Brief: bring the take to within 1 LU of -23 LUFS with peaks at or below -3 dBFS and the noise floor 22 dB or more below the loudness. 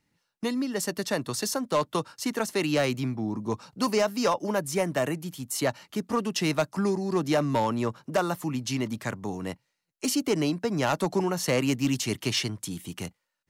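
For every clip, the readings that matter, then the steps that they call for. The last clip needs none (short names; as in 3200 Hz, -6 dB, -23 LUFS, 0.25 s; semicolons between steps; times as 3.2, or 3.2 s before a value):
clipped 0.5%; flat tops at -17.5 dBFS; loudness -28.0 LUFS; peak -17.5 dBFS; loudness target -23.0 LUFS
-> clip repair -17.5 dBFS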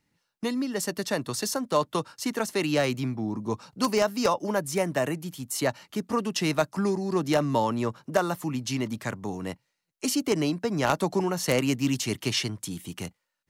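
clipped 0.0%; loudness -28.0 LUFS; peak -8.5 dBFS; loudness target -23.0 LUFS
-> gain +5 dB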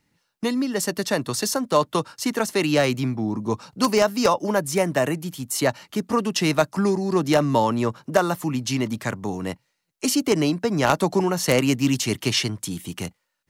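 loudness -23.0 LUFS; peak -3.5 dBFS; noise floor -74 dBFS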